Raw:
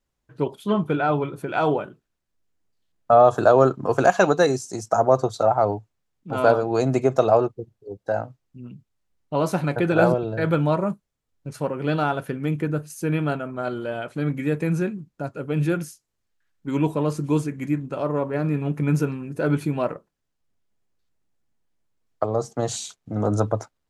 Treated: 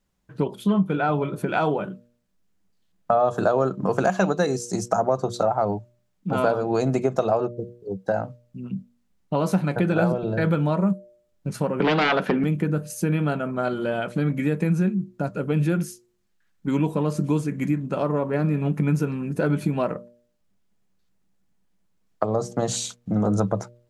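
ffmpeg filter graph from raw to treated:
ffmpeg -i in.wav -filter_complex "[0:a]asettb=1/sr,asplit=3[link_01][link_02][link_03];[link_01]atrim=end=11.804[link_04];[link_02]atrim=start=11.8:end=12.44,asetpts=PTS-STARTPTS,afade=type=in:duration=0.004:curve=qsin,afade=type=out:start_time=0.636:duration=0.004:curve=qsin,aeval=exprs='0.299*sin(PI/2*3.16*val(0)/0.299)':channel_layout=same,acrossover=split=190 5400:gain=0.0708 1 0.1[link_05][link_06][link_07];[link_05][link_06][link_07]amix=inputs=3:normalize=0[link_08];[link_03]atrim=start=12.436[link_09];[link_04][link_08]acrossfade=duration=0.004:curve1=hsin:curve2=qsin[link_10];[link_10][link_09]acrossfade=duration=0.004:curve1=qsin:curve2=hsin,equalizer=frequency=190:width_type=o:width=0.23:gain=14,bandreject=frequency=119.7:width_type=h:width=4,bandreject=frequency=239.4:width_type=h:width=4,bandreject=frequency=359.1:width_type=h:width=4,bandreject=frequency=478.8:width_type=h:width=4,bandreject=frequency=598.5:width_type=h:width=4,acompressor=threshold=-24dB:ratio=3,volume=4dB" out.wav

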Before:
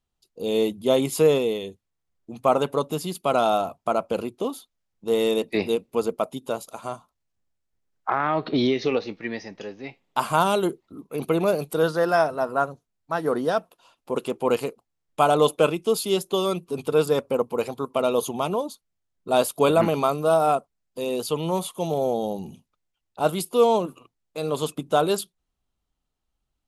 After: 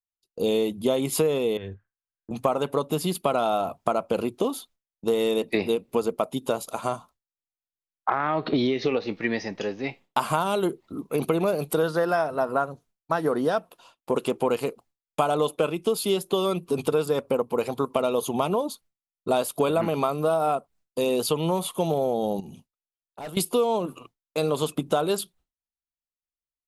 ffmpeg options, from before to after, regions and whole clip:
ffmpeg -i in.wav -filter_complex "[0:a]asettb=1/sr,asplit=3[link_01][link_02][link_03];[link_01]atrim=end=1.574[link_04];[link_02]atrim=start=1.57:end=2.31,asetpts=PTS-STARTPTS,afade=type=in:duration=0.004:curve=qsin,afade=type=out:start_time=0.736:duration=0.004:curve=qsin,lowpass=frequency=1600:width_type=q:width=16,equalizer=frequency=100:width_type=o:width=0.33:gain=8.5,acrossover=split=140|3000[link_05][link_06][link_07];[link_06]acompressor=threshold=-42dB:ratio=5:attack=3.2:release=140:knee=2.83:detection=peak[link_08];[link_05][link_08][link_07]amix=inputs=3:normalize=0[link_09];[link_03]atrim=start=2.306[link_10];[link_04][link_09]acrossfade=duration=0.004:curve1=hsin:curve2=qsin[link_11];[link_11][link_10]acrossfade=duration=0.004:curve1=qsin:curve2=hsin,asettb=1/sr,asplit=3[link_12][link_13][link_14];[link_12]atrim=end=22.404[link_15];[link_13]atrim=start=22.4:end=23.37,asetpts=PTS-STARTPTS,afade=type=in:duration=0.004:curve=qsin,afade=type=out:start_time=0.966:duration=0.004:curve=qsin,asoftclip=type=hard:threshold=-23dB,acompressor=threshold=-47dB:ratio=3:attack=3.2:release=140:knee=1:detection=peak[link_16];[link_14]atrim=start=23.366[link_17];[link_15][link_16]acrossfade=duration=0.004:curve1=hsin:curve2=qsin[link_18];[link_18][link_17]acrossfade=duration=0.004:curve1=qsin:curve2=hsin,agate=range=-33dB:threshold=-50dB:ratio=3:detection=peak,adynamicequalizer=threshold=0.00282:dfrequency=6300:dqfactor=1.5:tfrequency=6300:tqfactor=1.5:attack=5:release=100:ratio=0.375:range=3:mode=cutabove:tftype=bell,acompressor=threshold=-27dB:ratio=6,volume=6.5dB" out.wav

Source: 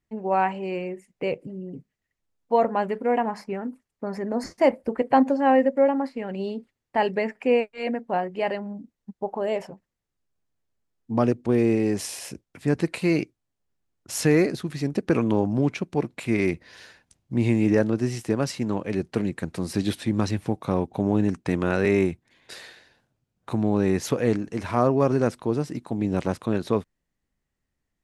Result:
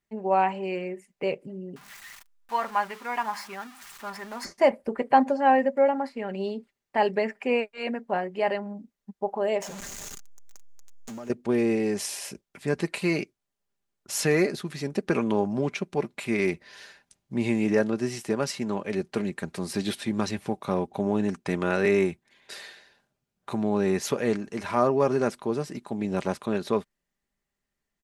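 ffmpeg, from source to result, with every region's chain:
ffmpeg -i in.wav -filter_complex "[0:a]asettb=1/sr,asplit=3[link_01][link_02][link_03];[link_01]atrim=end=1.764[link_04];[link_02]atrim=start=1.76:end=4.45,asetpts=PTS-STARTPTS,afade=type=in:duration=0.004:curve=qsin,afade=type=out:start_time=2.686:duration=0.004:curve=qsin,aeval=exprs='val(0)+0.5*0.0126*sgn(val(0))':channel_layout=same,lowshelf=frequency=730:width_type=q:width=1.5:gain=-11.5[link_05];[link_03]atrim=start=4.446[link_06];[link_04][link_05]acrossfade=duration=0.004:curve1=hsin:curve2=qsin[link_07];[link_07][link_06]acrossfade=duration=0.004:curve1=qsin:curve2=hsin,asettb=1/sr,asplit=3[link_08][link_09][link_10];[link_08]atrim=end=9.624[link_11];[link_09]atrim=start=9.62:end=11.3,asetpts=PTS-STARTPTS,afade=type=in:duration=0.004:curve=qsin,afade=type=out:start_time=1.676:duration=0.004:curve=qsin,aeval=exprs='val(0)+0.5*0.0282*sgn(val(0))':channel_layout=same,equalizer=frequency=6700:width=3.3:gain=13,acompressor=threshold=-34dB:ratio=6:attack=3.2:release=140:knee=1:detection=peak[link_12];[link_10]atrim=start=11.296[link_13];[link_11][link_12]acrossfade=duration=0.004:curve1=hsin:curve2=qsin[link_14];[link_14][link_13]acrossfade=duration=0.004:curve1=qsin:curve2=hsin,lowshelf=frequency=290:gain=-8,aecho=1:1:5:0.4" out.wav

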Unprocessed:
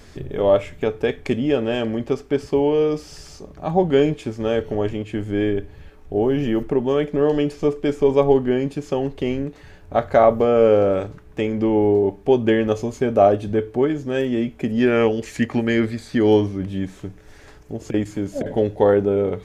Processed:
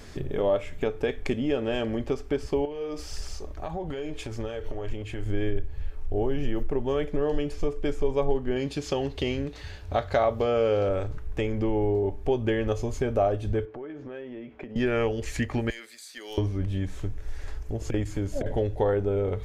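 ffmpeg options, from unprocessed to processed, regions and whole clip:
ffmpeg -i in.wav -filter_complex "[0:a]asettb=1/sr,asplit=3[link_01][link_02][link_03];[link_01]atrim=end=2.654[link_04];[link_02]atrim=start=2.65:end=5.26,asetpts=PTS-STARTPTS,afade=type=in:duration=0.004:curve=qsin,afade=type=out:start_time=2.606:duration=0.004:curve=qsin,lowshelf=frequency=330:gain=-5.5,acompressor=threshold=-28dB:ratio=12:attack=3.2:release=140:knee=1:detection=peak,aphaser=in_gain=1:out_gain=1:delay=3.3:decay=0.27:speed=1.7:type=sinusoidal[link_05];[link_03]atrim=start=5.256[link_06];[link_04][link_05]acrossfade=duration=0.004:curve1=hsin:curve2=qsin[link_07];[link_07][link_06]acrossfade=duration=0.004:curve1=qsin:curve2=hsin,asettb=1/sr,asplit=3[link_08][link_09][link_10];[link_08]atrim=end=8.564[link_11];[link_09]atrim=start=8.56:end=10.89,asetpts=PTS-STARTPTS,afade=type=in:duration=0.004:curve=qsin,afade=type=out:start_time=2.326:duration=0.004:curve=qsin,highpass=54,equalizer=frequency=4200:width_type=o:width=1.4:gain=9.5[link_12];[link_10]atrim=start=10.886[link_13];[link_11][link_12]acrossfade=duration=0.004:curve1=hsin:curve2=qsin[link_14];[link_14][link_13]acrossfade=duration=0.004:curve1=qsin:curve2=hsin,asettb=1/sr,asplit=3[link_15][link_16][link_17];[link_15]atrim=end=13.654[link_18];[link_16]atrim=start=13.65:end=14.76,asetpts=PTS-STARTPTS,afade=type=in:duration=0.004:curve=qsin,afade=type=out:start_time=1.106:duration=0.004:curve=qsin,highpass=230,lowpass=2300,acompressor=threshold=-33dB:ratio=8:attack=3.2:release=140:knee=1:detection=peak[link_19];[link_17]atrim=start=14.756[link_20];[link_18][link_19]acrossfade=duration=0.004:curve1=hsin:curve2=qsin[link_21];[link_21][link_20]acrossfade=duration=0.004:curve1=qsin:curve2=hsin,asettb=1/sr,asplit=3[link_22][link_23][link_24];[link_22]atrim=end=15.704[link_25];[link_23]atrim=start=15.7:end=16.38,asetpts=PTS-STARTPTS,afade=type=in:duration=0.004:curve=qsin,afade=type=out:start_time=0.676:duration=0.004:curve=qsin,highpass=frequency=190:width=0.5412,highpass=frequency=190:width=1.3066,aderivative,aeval=exprs='clip(val(0),-1,0.0251)':channel_layout=same[link_26];[link_24]atrim=start=16.376[link_27];[link_25][link_26]acrossfade=duration=0.004:curve1=hsin:curve2=qsin[link_28];[link_28][link_27]acrossfade=duration=0.004:curve1=qsin:curve2=hsin,asubboost=boost=9.5:cutoff=60,acompressor=threshold=-27dB:ratio=2" out.wav

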